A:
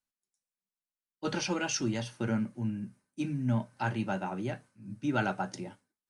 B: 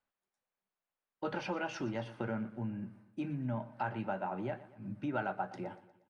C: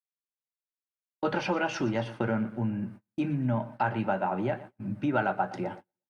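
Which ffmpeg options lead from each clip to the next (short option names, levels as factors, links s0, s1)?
-af "firequalizer=gain_entry='entry(260,0);entry(610,8);entry(6200,-16)':delay=0.05:min_phase=1,acompressor=threshold=0.00794:ratio=2.5,aecho=1:1:119|238|357|476:0.141|0.0692|0.0339|0.0166,volume=1.41"
-af "agate=range=0.02:threshold=0.00282:ratio=16:detection=peak,volume=2.66"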